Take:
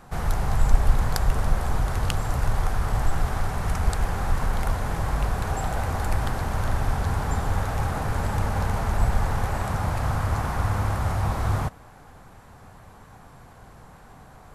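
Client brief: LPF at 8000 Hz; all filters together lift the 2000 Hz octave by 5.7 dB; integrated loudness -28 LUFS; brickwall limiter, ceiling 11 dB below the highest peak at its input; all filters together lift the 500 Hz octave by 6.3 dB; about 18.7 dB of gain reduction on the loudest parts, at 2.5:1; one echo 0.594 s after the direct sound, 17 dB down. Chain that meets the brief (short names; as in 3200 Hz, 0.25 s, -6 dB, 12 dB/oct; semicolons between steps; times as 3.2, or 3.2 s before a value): LPF 8000 Hz; bell 500 Hz +7.5 dB; bell 2000 Hz +7 dB; compressor 2.5:1, threshold -40 dBFS; limiter -28 dBFS; echo 0.594 s -17 dB; gain +12 dB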